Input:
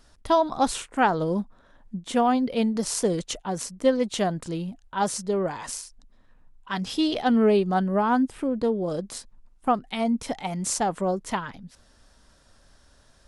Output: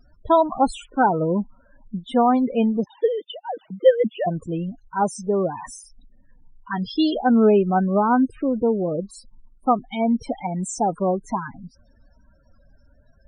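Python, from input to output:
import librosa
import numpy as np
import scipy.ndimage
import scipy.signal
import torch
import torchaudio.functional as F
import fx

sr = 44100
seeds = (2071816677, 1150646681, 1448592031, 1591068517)

y = fx.sine_speech(x, sr, at=(2.84, 4.27))
y = fx.spec_topn(y, sr, count=16)
y = F.gain(torch.from_numpy(y), 4.0).numpy()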